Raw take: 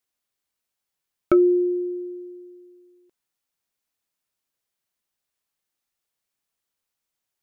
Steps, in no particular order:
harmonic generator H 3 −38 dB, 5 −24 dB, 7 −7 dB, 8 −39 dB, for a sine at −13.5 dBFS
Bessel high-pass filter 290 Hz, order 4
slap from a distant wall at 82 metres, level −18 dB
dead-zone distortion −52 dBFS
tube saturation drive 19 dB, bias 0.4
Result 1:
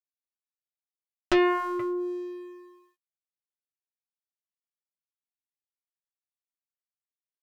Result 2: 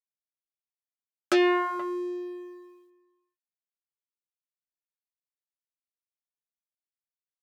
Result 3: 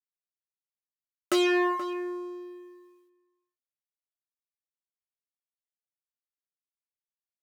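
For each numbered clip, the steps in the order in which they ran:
slap from a distant wall, then dead-zone distortion, then Bessel high-pass filter, then tube saturation, then harmonic generator
dead-zone distortion, then tube saturation, then slap from a distant wall, then harmonic generator, then Bessel high-pass filter
harmonic generator, then dead-zone distortion, then slap from a distant wall, then tube saturation, then Bessel high-pass filter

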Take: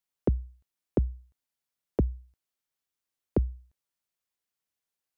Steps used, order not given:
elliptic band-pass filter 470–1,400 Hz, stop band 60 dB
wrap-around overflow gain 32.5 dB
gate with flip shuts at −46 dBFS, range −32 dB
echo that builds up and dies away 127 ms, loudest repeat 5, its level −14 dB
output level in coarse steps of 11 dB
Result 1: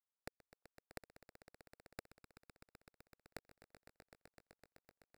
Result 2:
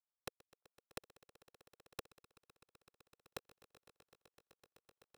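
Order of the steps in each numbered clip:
elliptic band-pass filter, then output level in coarse steps, then gate with flip, then wrap-around overflow, then echo that builds up and dies away
gate with flip, then elliptic band-pass filter, then wrap-around overflow, then echo that builds up and dies away, then output level in coarse steps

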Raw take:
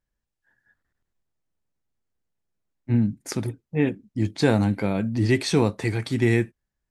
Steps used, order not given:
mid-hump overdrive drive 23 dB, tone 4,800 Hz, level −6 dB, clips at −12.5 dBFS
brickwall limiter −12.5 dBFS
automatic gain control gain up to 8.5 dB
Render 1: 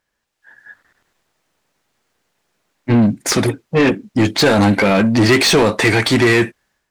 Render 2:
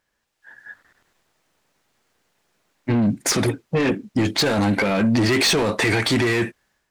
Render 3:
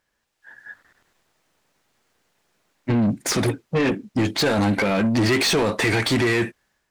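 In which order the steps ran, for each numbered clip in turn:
brickwall limiter, then mid-hump overdrive, then automatic gain control
mid-hump overdrive, then automatic gain control, then brickwall limiter
automatic gain control, then brickwall limiter, then mid-hump overdrive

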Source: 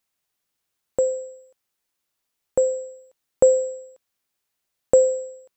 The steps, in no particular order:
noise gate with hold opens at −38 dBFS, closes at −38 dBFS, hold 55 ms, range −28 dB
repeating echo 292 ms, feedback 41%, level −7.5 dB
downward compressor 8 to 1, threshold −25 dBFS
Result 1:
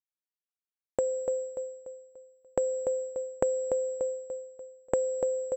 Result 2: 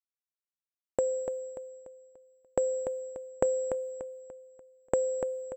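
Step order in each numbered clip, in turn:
noise gate with hold, then repeating echo, then downward compressor
noise gate with hold, then downward compressor, then repeating echo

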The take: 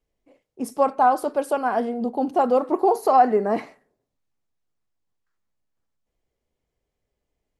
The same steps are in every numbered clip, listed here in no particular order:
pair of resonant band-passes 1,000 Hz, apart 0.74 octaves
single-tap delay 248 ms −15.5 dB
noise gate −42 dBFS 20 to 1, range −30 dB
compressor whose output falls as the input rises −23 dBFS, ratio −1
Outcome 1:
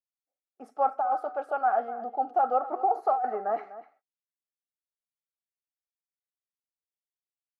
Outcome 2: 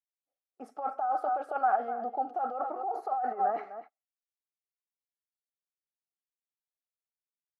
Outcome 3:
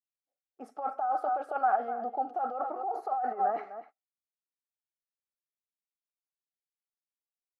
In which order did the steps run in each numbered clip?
noise gate, then pair of resonant band-passes, then compressor whose output falls as the input rises, then single-tap delay
single-tap delay, then noise gate, then compressor whose output falls as the input rises, then pair of resonant band-passes
single-tap delay, then compressor whose output falls as the input rises, then noise gate, then pair of resonant band-passes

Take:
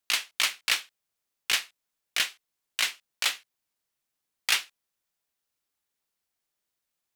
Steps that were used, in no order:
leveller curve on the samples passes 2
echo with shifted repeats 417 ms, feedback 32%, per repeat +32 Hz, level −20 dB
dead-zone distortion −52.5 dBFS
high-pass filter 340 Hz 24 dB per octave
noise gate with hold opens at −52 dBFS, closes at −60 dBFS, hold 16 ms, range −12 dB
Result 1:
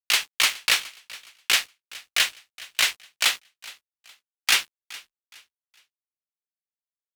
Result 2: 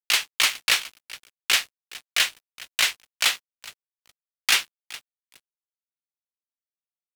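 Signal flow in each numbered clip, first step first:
high-pass filter, then leveller curve on the samples, then dead-zone distortion, then echo with shifted repeats, then noise gate with hold
high-pass filter, then echo with shifted repeats, then noise gate with hold, then leveller curve on the samples, then dead-zone distortion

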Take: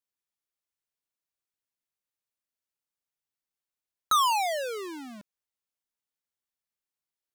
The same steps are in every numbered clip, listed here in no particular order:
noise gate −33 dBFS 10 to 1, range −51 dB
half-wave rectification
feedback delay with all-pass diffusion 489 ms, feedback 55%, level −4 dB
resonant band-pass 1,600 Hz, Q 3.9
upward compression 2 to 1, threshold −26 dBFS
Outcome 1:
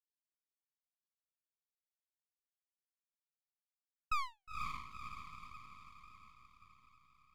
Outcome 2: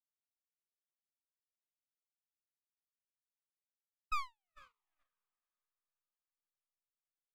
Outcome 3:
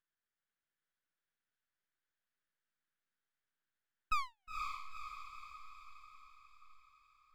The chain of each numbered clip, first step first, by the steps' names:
upward compression, then resonant band-pass, then noise gate, then feedback delay with all-pass diffusion, then half-wave rectification
upward compression, then resonant band-pass, then half-wave rectification, then feedback delay with all-pass diffusion, then noise gate
resonant band-pass, then half-wave rectification, then noise gate, then upward compression, then feedback delay with all-pass diffusion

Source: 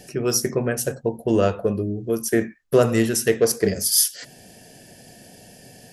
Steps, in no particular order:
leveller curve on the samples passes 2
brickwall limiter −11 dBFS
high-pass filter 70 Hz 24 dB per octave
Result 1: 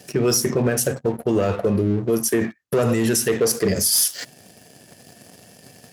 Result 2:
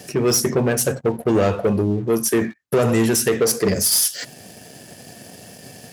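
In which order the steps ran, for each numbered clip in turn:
leveller curve on the samples, then high-pass filter, then brickwall limiter
brickwall limiter, then leveller curve on the samples, then high-pass filter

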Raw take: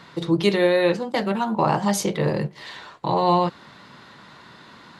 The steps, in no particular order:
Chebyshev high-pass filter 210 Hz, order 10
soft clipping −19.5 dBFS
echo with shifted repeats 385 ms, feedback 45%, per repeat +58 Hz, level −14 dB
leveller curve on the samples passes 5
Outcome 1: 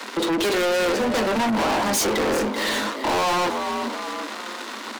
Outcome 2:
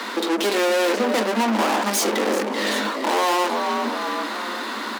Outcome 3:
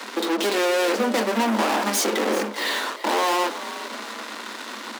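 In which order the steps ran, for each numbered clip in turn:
leveller curve on the samples, then echo with shifted repeats, then Chebyshev high-pass filter, then soft clipping
soft clipping, then echo with shifted repeats, then leveller curve on the samples, then Chebyshev high-pass filter
leveller curve on the samples, then soft clipping, then Chebyshev high-pass filter, then echo with shifted repeats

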